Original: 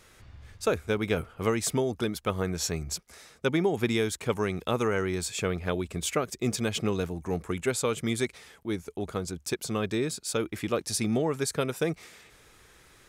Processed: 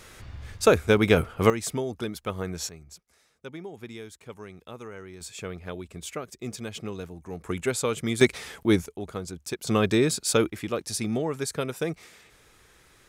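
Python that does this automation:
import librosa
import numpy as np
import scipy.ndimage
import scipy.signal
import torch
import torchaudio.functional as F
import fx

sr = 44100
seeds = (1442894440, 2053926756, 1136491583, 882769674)

y = fx.gain(x, sr, db=fx.steps((0.0, 8.0), (1.5, -2.5), (2.69, -14.0), (5.21, -7.0), (7.44, 1.0), (8.21, 10.5), (8.86, -2.0), (9.67, 7.0), (10.5, -1.0)))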